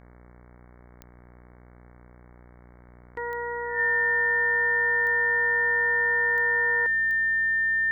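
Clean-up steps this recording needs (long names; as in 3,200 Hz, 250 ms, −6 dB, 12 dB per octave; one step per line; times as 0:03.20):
click removal
hum removal 60.6 Hz, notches 37
notch filter 1,800 Hz, Q 30
downward expander −43 dBFS, range −21 dB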